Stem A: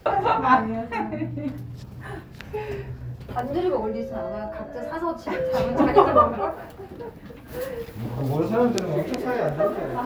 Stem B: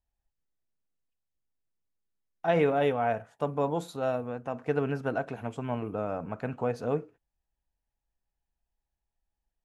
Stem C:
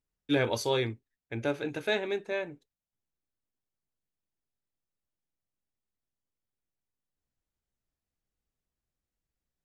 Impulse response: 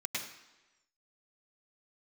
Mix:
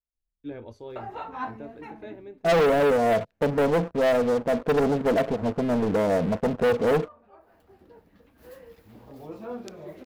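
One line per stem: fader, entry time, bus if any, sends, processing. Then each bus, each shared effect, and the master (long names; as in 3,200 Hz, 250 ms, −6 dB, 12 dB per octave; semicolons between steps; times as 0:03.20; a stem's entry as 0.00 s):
−15.5 dB, 0.90 s, no send, automatic ducking −21 dB, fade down 0.25 s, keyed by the second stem
0.0 dB, 0.00 s, no send, Chebyshev low-pass with heavy ripple 690 Hz, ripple 6 dB; leveller curve on the samples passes 5
−16.5 dB, 0.15 s, no send, spectral tilt −4.5 dB per octave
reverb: not used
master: parametric band 130 Hz −12.5 dB 0.36 octaves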